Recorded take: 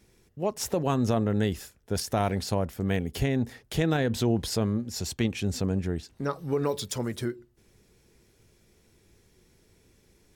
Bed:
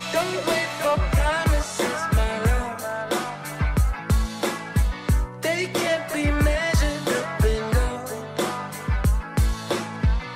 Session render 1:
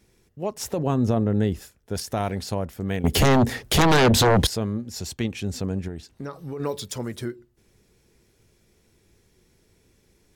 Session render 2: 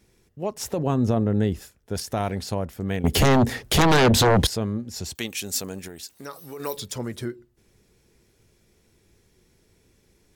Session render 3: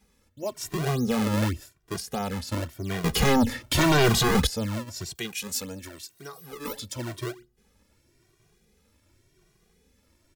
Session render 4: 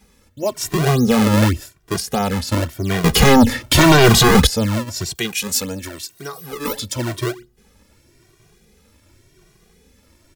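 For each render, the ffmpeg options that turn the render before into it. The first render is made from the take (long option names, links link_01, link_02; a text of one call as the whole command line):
ffmpeg -i in.wav -filter_complex "[0:a]asettb=1/sr,asplit=3[link_01][link_02][link_03];[link_01]atrim=end=0.784[link_04];[link_02]atrim=start=0.78:end=1.62,asetpts=PTS-STARTPTS,afade=type=in:duration=0.004:curve=qsin,afade=type=out:start_time=0.836:duration=0.004:curve=qsin,tiltshelf=frequency=940:gain=4.5[link_05];[link_03]atrim=start=1.616[link_06];[link_04][link_05]acrossfade=duration=0.004:curve1=hsin:curve2=qsin[link_07];[link_07][link_06]acrossfade=duration=0.004:curve1=qsin:curve2=hsin,asettb=1/sr,asplit=3[link_08][link_09][link_10];[link_08]atrim=end=3.044[link_11];[link_09]atrim=start=3.04:end=4.47,asetpts=PTS-STARTPTS,afade=type=in:duration=0.004:curve=qsin,afade=type=out:start_time=1.426:duration=0.004:curve=qsin,aeval=exprs='0.237*sin(PI/2*3.98*val(0)/0.237)':channel_layout=same[link_12];[link_10]atrim=start=4.466[link_13];[link_11][link_12]acrossfade=duration=0.004:curve1=hsin:curve2=qsin[link_14];[link_14][link_13]acrossfade=duration=0.004:curve1=qsin:curve2=hsin,asettb=1/sr,asplit=3[link_15][link_16][link_17];[link_15]atrim=end=5.884[link_18];[link_16]atrim=start=5.88:end=6.6,asetpts=PTS-STARTPTS,afade=type=in:duration=0.004:curve=qsin,afade=type=out:start_time=0.716:duration=0.004:curve=qsin,acompressor=threshold=-29dB:ratio=6:attack=3.2:release=140:knee=1:detection=peak[link_19];[link_17]atrim=start=6.596[link_20];[link_18][link_19]acrossfade=duration=0.004:curve1=hsin:curve2=qsin[link_21];[link_21][link_20]acrossfade=duration=0.004:curve1=qsin:curve2=hsin" out.wav
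ffmpeg -i in.wav -filter_complex "[0:a]asettb=1/sr,asplit=3[link_01][link_02][link_03];[link_01]atrim=end=5.154[link_04];[link_02]atrim=start=5.15:end=6.77,asetpts=PTS-STARTPTS,afade=type=in:duration=0.004:curve=qsin,afade=type=out:start_time=1.616:duration=0.004:curve=qsin,aemphasis=mode=production:type=riaa[link_05];[link_03]atrim=start=6.766[link_06];[link_04][link_05]acrossfade=duration=0.004:curve1=hsin:curve2=qsin[link_07];[link_07][link_06]acrossfade=duration=0.004:curve1=qsin:curve2=hsin" out.wav
ffmpeg -i in.wav -filter_complex "[0:a]acrossover=split=810|4700[link_01][link_02][link_03];[link_01]acrusher=samples=34:mix=1:aa=0.000001:lfo=1:lforange=54.4:lforate=1.7[link_04];[link_04][link_02][link_03]amix=inputs=3:normalize=0,asplit=2[link_05][link_06];[link_06]adelay=2,afreqshift=0.92[link_07];[link_05][link_07]amix=inputs=2:normalize=1" out.wav
ffmpeg -i in.wav -af "volume=10.5dB,alimiter=limit=-1dB:level=0:latency=1" out.wav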